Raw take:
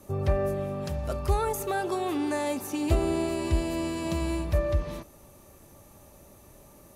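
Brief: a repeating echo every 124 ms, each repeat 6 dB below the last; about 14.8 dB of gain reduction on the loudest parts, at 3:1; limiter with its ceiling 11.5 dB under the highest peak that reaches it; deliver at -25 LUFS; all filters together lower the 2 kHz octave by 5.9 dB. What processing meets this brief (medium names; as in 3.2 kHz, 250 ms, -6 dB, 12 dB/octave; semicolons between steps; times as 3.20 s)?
peaking EQ 2 kHz -8 dB; compression 3:1, threshold -40 dBFS; peak limiter -38 dBFS; feedback delay 124 ms, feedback 50%, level -6 dB; trim +20.5 dB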